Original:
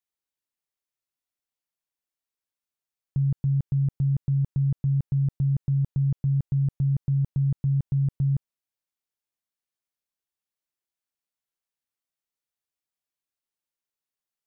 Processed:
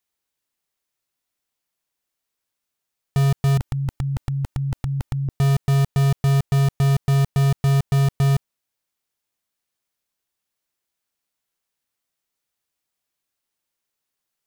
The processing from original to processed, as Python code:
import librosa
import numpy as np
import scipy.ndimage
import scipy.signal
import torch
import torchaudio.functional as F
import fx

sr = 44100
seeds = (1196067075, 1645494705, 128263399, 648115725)

p1 = fx.comb(x, sr, ms=3.3, depth=0.92, at=(3.57, 5.29))
p2 = (np.mod(10.0 ** (22.5 / 20.0) * p1 + 1.0, 2.0) - 1.0) / 10.0 ** (22.5 / 20.0)
p3 = p1 + (p2 * 10.0 ** (-8.5 / 20.0))
y = p3 * 10.0 ** (6.5 / 20.0)